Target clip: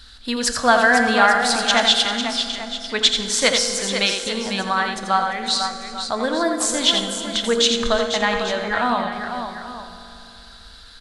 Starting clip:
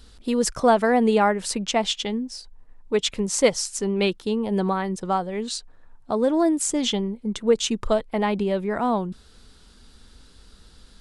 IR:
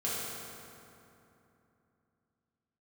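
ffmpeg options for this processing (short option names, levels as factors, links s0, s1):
-filter_complex "[0:a]equalizer=f=160:t=o:w=0.67:g=-12,equalizer=f=400:t=o:w=0.67:g=-11,equalizer=f=1600:t=o:w=0.67:g=11,equalizer=f=4000:t=o:w=0.67:g=11,aecho=1:1:86|345|499|843:0.447|0.106|0.398|0.2,asplit=2[s0][s1];[1:a]atrim=start_sample=2205[s2];[s1][s2]afir=irnorm=-1:irlink=0,volume=0.266[s3];[s0][s3]amix=inputs=2:normalize=0"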